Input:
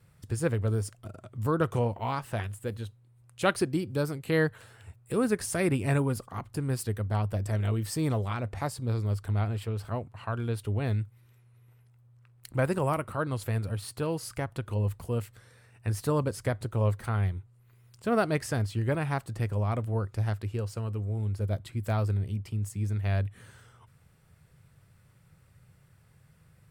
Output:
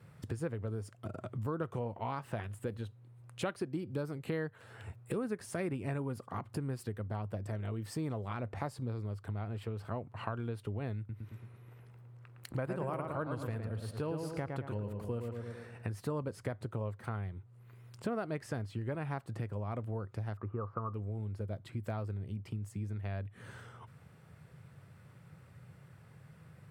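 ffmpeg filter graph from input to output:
ffmpeg -i in.wav -filter_complex "[0:a]asettb=1/sr,asplit=3[link_01][link_02][link_03];[link_01]atrim=end=10.984[link_04];[link_02]atrim=start=10.98:end=15.87,asetpts=PTS-STARTPTS,afade=type=in:duration=0.004:curve=qsin,afade=type=out:start_time=4.886:duration=0.004:curve=qsin,acompressor=mode=upward:threshold=-51dB:ratio=2.5:attack=3.2:release=140:knee=2.83:detection=peak,asplit=2[link_05][link_06];[link_06]adelay=111,lowpass=frequency=2600:poles=1,volume=-5dB,asplit=2[link_07][link_08];[link_08]adelay=111,lowpass=frequency=2600:poles=1,volume=0.47,asplit=2[link_09][link_10];[link_10]adelay=111,lowpass=frequency=2600:poles=1,volume=0.47,asplit=2[link_11][link_12];[link_12]adelay=111,lowpass=frequency=2600:poles=1,volume=0.47,asplit=2[link_13][link_14];[link_14]adelay=111,lowpass=frequency=2600:poles=1,volume=0.47,asplit=2[link_15][link_16];[link_16]adelay=111,lowpass=frequency=2600:poles=1,volume=0.47[link_17];[link_05][link_07][link_09][link_11][link_13][link_15][link_17]amix=inputs=7:normalize=0,atrim=end_sample=215649[link_18];[link_03]atrim=start=15.866[link_19];[link_04][link_18]acrossfade=duration=0.004:curve1=hsin:curve2=qsin[link_20];[link_20][link_19]acrossfade=duration=0.004:curve1=qsin:curve2=hsin,asettb=1/sr,asplit=3[link_21][link_22][link_23];[link_21]atrim=end=20.374[link_24];[link_22]atrim=start=20.37:end=20.94,asetpts=PTS-STARTPTS,afade=type=in:duration=0.004:curve=qsin,afade=type=out:start_time=0.566:duration=0.004:curve=qsin,lowpass=frequency=1200:width_type=q:width=13,aemphasis=mode=reproduction:type=75kf[link_25];[link_23]atrim=start=20.936[link_26];[link_24][link_25]acrossfade=duration=0.004:curve1=hsin:curve2=qsin[link_27];[link_27][link_26]acrossfade=duration=0.004:curve1=qsin:curve2=hsin,acompressor=threshold=-41dB:ratio=5,highpass=110,highshelf=frequency=3500:gain=-11.5,volume=6.5dB" out.wav

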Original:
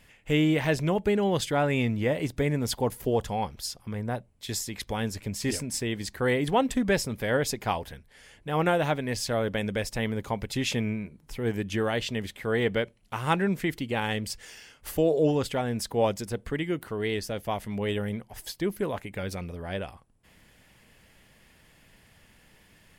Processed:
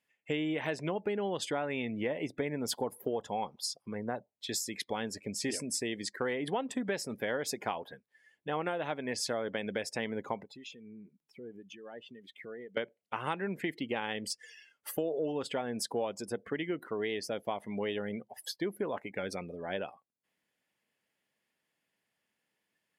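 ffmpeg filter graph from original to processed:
ffmpeg -i in.wav -filter_complex "[0:a]asettb=1/sr,asplit=3[link_01][link_02][link_03];[link_01]atrim=end=10.434[link_04];[link_02]atrim=start=10.43:end=12.77,asetpts=PTS-STARTPTS,afade=type=in:duration=0.004:curve=qsin,afade=type=out:start_time=2.336:duration=0.004:curve=qsin,acompressor=threshold=-39dB:ratio=8:attack=3.2:release=140:knee=1:detection=peak,acrossover=split=2000[link_05][link_06];[link_05]aeval=exprs='val(0)*(1-0.5/2+0.5/2*cos(2*PI*1.9*n/s))':channel_layout=same[link_07];[link_06]aeval=exprs='val(0)*(1-0.5/2-0.5/2*cos(2*PI*1.9*n/s))':channel_layout=same[link_08];[link_07][link_08]amix=inputs=2:normalize=0[link_09];[link_03]atrim=start=12.766[link_10];[link_04][link_09]acrossfade=duration=0.004:curve1=hsin:curve2=qsin[link_11];[link_11][link_10]acrossfade=duration=0.004:curve1=qsin:curve2=hsin,highpass=240,afftdn=noise_reduction=23:noise_floor=-44,acompressor=threshold=-30dB:ratio=6" out.wav

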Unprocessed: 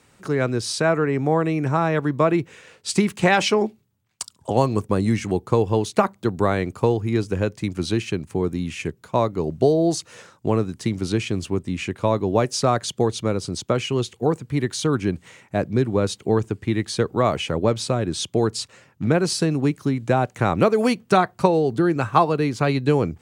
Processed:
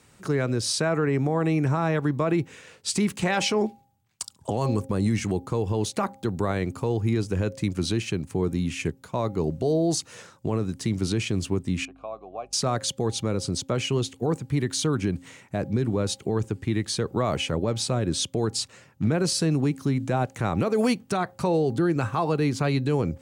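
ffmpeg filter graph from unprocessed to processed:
ffmpeg -i in.wav -filter_complex "[0:a]asettb=1/sr,asplit=3[link_01][link_02][link_03];[link_01]atrim=end=11.854[link_04];[link_02]atrim=start=11.85:end=12.53,asetpts=PTS-STARTPTS,afade=type=in:duration=0.004:curve=qsin,afade=type=out:start_time=0.676:duration=0.004:curve=qsin,acompressor=threshold=-24dB:ratio=1.5:attack=3.2:release=140:knee=1:detection=peak,asplit=3[link_05][link_06][link_07];[link_05]bandpass=frequency=730:width_type=q:width=8,volume=0dB[link_08];[link_06]bandpass=frequency=1090:width_type=q:width=8,volume=-6dB[link_09];[link_07]bandpass=frequency=2440:width_type=q:width=8,volume=-9dB[link_10];[link_08][link_09][link_10]amix=inputs=3:normalize=0,aeval=exprs='val(0)+0.00112*(sin(2*PI*50*n/s)+sin(2*PI*2*50*n/s)/2+sin(2*PI*3*50*n/s)/3+sin(2*PI*4*50*n/s)/4+sin(2*PI*5*50*n/s)/5)':channel_layout=same[link_11];[link_03]atrim=start=12.526[link_12];[link_04][link_11]acrossfade=duration=0.004:curve1=hsin:curve2=qsin[link_13];[link_13][link_12]acrossfade=duration=0.004:curve1=qsin:curve2=hsin,bass=frequency=250:gain=3,treble=frequency=4000:gain=3,bandreject=frequency=268:width_type=h:width=4,bandreject=frequency=536:width_type=h:width=4,bandreject=frequency=804:width_type=h:width=4,alimiter=limit=-13.5dB:level=0:latency=1:release=50,volume=-1.5dB" out.wav

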